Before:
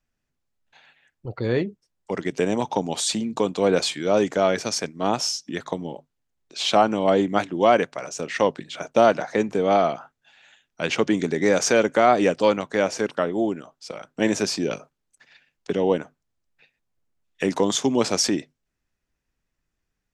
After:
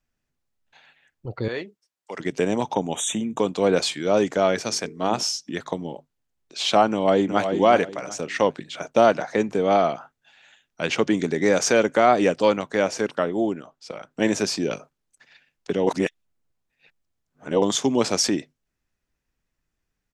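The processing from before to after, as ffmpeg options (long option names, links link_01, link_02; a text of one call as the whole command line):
ffmpeg -i in.wav -filter_complex "[0:a]asettb=1/sr,asplit=3[link_01][link_02][link_03];[link_01]atrim=end=1.484[link_04];[link_02]atrim=start=1.48:end=2.2,asetpts=PTS-STARTPTS,afade=type=in:duration=0.004:curve=qsin,afade=type=out:start_time=0.716:duration=0.004:curve=qsin,highpass=frequency=1000:poles=1[link_05];[link_03]atrim=start=2.196[link_06];[link_04][link_05]acrossfade=duration=0.004:curve1=hsin:curve2=qsin[link_07];[link_07][link_06]acrossfade=duration=0.004:curve1=qsin:curve2=hsin,asettb=1/sr,asplit=3[link_08][link_09][link_10];[link_08]atrim=end=2.744[link_11];[link_09]atrim=start=2.74:end=3.39,asetpts=PTS-STARTPTS,afade=type=in:duration=0.004:curve=qsin,afade=type=out:start_time=0.646:duration=0.004:curve=qsin,asuperstop=centerf=4700:order=20:qfactor=2.3[link_12];[link_10]atrim=start=3.386[link_13];[link_11][link_12]acrossfade=duration=0.004:curve1=hsin:curve2=qsin[link_14];[link_14][link_13]acrossfade=duration=0.004:curve1=qsin:curve2=hsin,asettb=1/sr,asplit=3[link_15][link_16][link_17];[link_15]atrim=end=4.624[link_18];[link_16]atrim=start=4.62:end=5.23,asetpts=PTS-STARTPTS,afade=type=in:duration=0.004:curve=qsin,afade=type=out:start_time=0.606:duration=0.004:curve=qsin,bandreject=frequency=50:width_type=h:width=6,bandreject=frequency=100:width_type=h:width=6,bandreject=frequency=150:width_type=h:width=6,bandreject=frequency=200:width_type=h:width=6,bandreject=frequency=250:width_type=h:width=6,bandreject=frequency=300:width_type=h:width=6,bandreject=frequency=350:width_type=h:width=6,bandreject=frequency=400:width_type=h:width=6,bandreject=frequency=450:width_type=h:width=6[link_19];[link_17]atrim=start=5.226[link_20];[link_18][link_19]acrossfade=duration=0.004:curve1=hsin:curve2=qsin[link_21];[link_21][link_20]acrossfade=duration=0.004:curve1=qsin:curve2=hsin,asplit=2[link_22][link_23];[link_23]afade=type=in:start_time=6.9:duration=0.01,afade=type=out:start_time=7.52:duration=0.01,aecho=0:1:370|740|1110:0.446684|0.111671|0.0279177[link_24];[link_22][link_24]amix=inputs=2:normalize=0,asettb=1/sr,asplit=3[link_25][link_26][link_27];[link_25]atrim=end=13.534[link_28];[link_26]atrim=start=13.53:end=14.11,asetpts=PTS-STARTPTS,afade=type=in:duration=0.004:curve=qsin,afade=type=out:start_time=0.576:duration=0.004:curve=qsin,highshelf=frequency=6700:gain=-8.5[link_29];[link_27]atrim=start=14.106[link_30];[link_28][link_29]acrossfade=duration=0.004:curve1=hsin:curve2=qsin[link_31];[link_31][link_30]acrossfade=duration=0.004:curve1=qsin:curve2=hsin,asplit=3[link_32][link_33][link_34];[link_32]atrim=end=15.872[link_35];[link_33]atrim=start=15.868:end=17.622,asetpts=PTS-STARTPTS,areverse[link_36];[link_34]atrim=start=17.618[link_37];[link_35][link_36]acrossfade=duration=0.004:curve1=hsin:curve2=hsin[link_38];[link_38][link_37]acrossfade=duration=0.004:curve1=hsin:curve2=hsin" out.wav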